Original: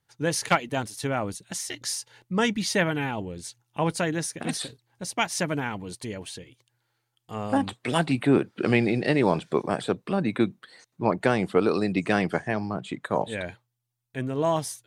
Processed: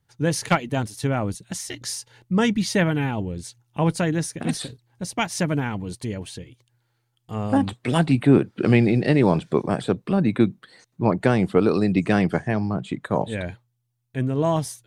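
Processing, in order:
low-shelf EQ 260 Hz +10.5 dB

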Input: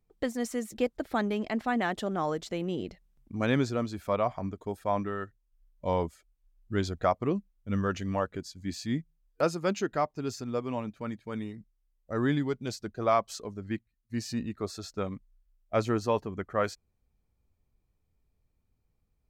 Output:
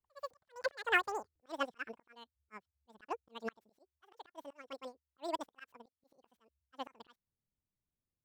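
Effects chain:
running median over 9 samples
dynamic equaliser 720 Hz, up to +5 dB, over −43 dBFS, Q 3.6
volume swells 462 ms
wrong playback speed 33 rpm record played at 78 rpm
expander for the loud parts 2.5 to 1, over −42 dBFS
level +2 dB

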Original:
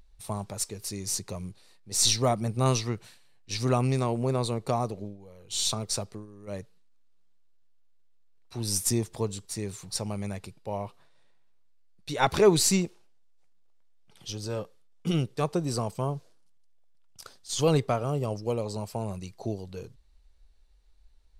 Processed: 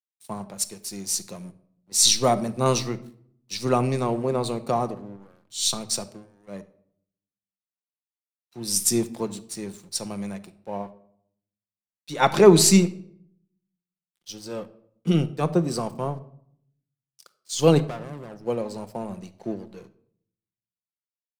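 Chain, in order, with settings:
low shelf with overshoot 130 Hz −10 dB, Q 1.5
dead-zone distortion −49 dBFS
0:04.94–0:05.63: transient designer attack −7 dB, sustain +8 dB
0:17.78–0:18.41: tube saturation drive 34 dB, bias 0.75
rectangular room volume 2,200 cubic metres, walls furnished, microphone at 0.86 metres
multiband upward and downward expander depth 40%
level +2.5 dB

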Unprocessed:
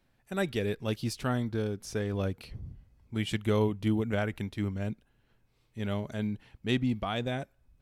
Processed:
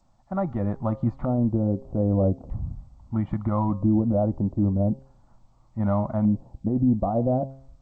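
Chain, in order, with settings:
one scale factor per block 7 bits
automatic gain control gain up to 4.5 dB
brickwall limiter −20 dBFS, peak gain reduction 9 dB
drawn EQ curve 110 Hz 0 dB, 550 Hz +12 dB, 1,600 Hz +10 dB, 2,700 Hz −28 dB
on a send: delay with a high-pass on its return 66 ms, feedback 78%, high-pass 3,600 Hz, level −22.5 dB
on the sum: auto-filter low-pass square 0.4 Hz 470–6,300 Hz
spectral tilt −2 dB per octave
phaser with its sweep stopped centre 1,600 Hz, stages 6
hum removal 134.1 Hz, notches 9
G.722 64 kbit/s 16,000 Hz

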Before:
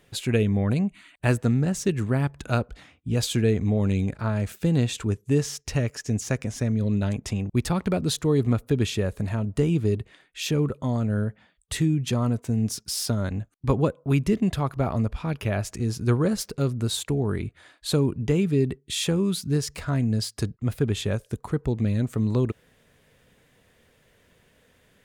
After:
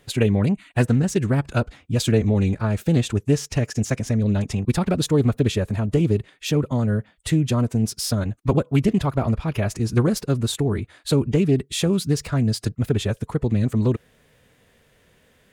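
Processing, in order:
phase-vocoder stretch with locked phases 0.62×
highs frequency-modulated by the lows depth 0.15 ms
level +4 dB

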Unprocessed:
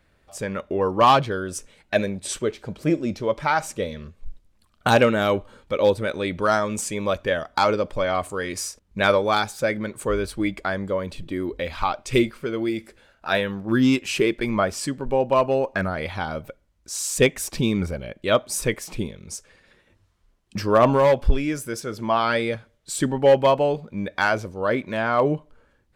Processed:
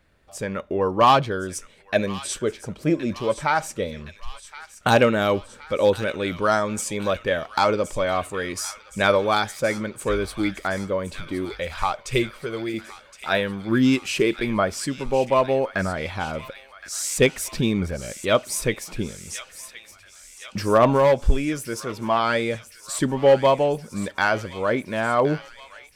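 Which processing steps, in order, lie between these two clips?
0:11.45–0:12.74: parametric band 270 Hz −11 dB 0.56 octaves
delay with a high-pass on its return 1,068 ms, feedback 65%, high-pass 1,700 Hz, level −12 dB

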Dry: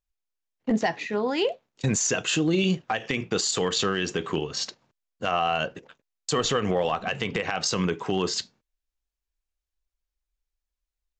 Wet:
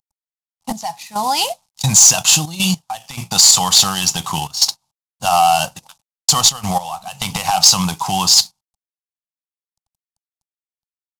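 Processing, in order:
variable-slope delta modulation 64 kbit/s
drawn EQ curve 170 Hz 0 dB, 430 Hz −23 dB, 830 Hz +11 dB, 1,700 Hz −10 dB, 4,900 Hz +13 dB
leveller curve on the samples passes 1
gate pattern "xxx.x...xxxxxx" 104 BPM −12 dB
level +5 dB

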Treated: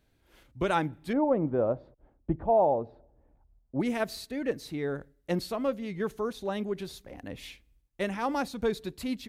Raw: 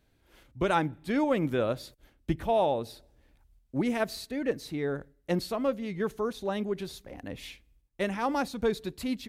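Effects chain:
0:01.13–0:03.80: low-pass with resonance 810 Hz, resonance Q 1.5
level −1 dB

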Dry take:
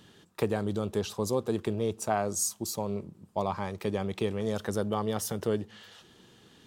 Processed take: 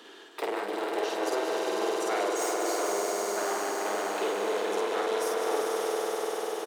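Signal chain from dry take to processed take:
wavefolder on the positive side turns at −28 dBFS
Butterworth high-pass 310 Hz 36 dB per octave
high-shelf EQ 6,000 Hz −7.5 dB
notch filter 560 Hz, Q 12
on a send: echo that builds up and dies away 99 ms, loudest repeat 5, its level −6.5 dB
on the sum: flanger 0.93 Hz, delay 3.8 ms, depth 8.1 ms, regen +69%
loudspeakers that aren't time-aligned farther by 17 metres −1 dB, 61 metres −10 dB
multiband upward and downward compressor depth 40%
level +3 dB

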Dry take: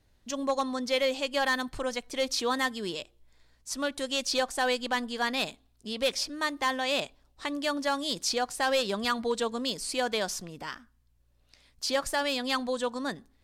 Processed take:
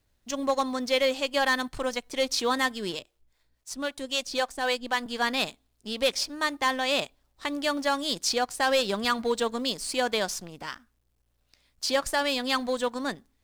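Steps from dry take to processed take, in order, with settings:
mu-law and A-law mismatch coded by A
0:02.99–0:05.06: two-band tremolo in antiphase 3.8 Hz, depth 70%, crossover 430 Hz
level +3.5 dB

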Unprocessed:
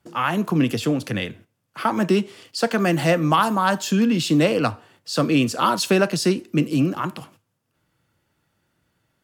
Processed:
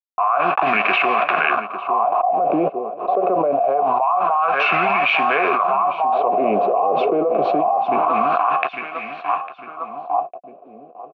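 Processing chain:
hold until the input has moved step −27 dBFS
low-pass filter 3,800 Hz 12 dB per octave
parametric band 220 Hz +7 dB 0.65 octaves
speed change −17%
formant filter a
double-tracking delay 14 ms −11 dB
hollow resonant body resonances 370/700/990/2,600 Hz, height 7 dB, ringing for 25 ms
on a send: repeating echo 852 ms, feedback 36%, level −16 dB
on the sum: LFO wah 0.25 Hz 460–1,900 Hz, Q 3.4
envelope flattener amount 100%

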